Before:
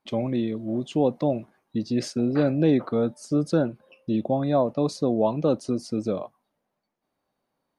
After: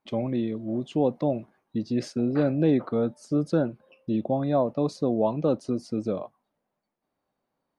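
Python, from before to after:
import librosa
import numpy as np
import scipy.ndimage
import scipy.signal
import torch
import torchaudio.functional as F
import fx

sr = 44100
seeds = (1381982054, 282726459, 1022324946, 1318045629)

y = fx.high_shelf(x, sr, hz=3800.0, db=-7.0)
y = F.gain(torch.from_numpy(y), -1.5).numpy()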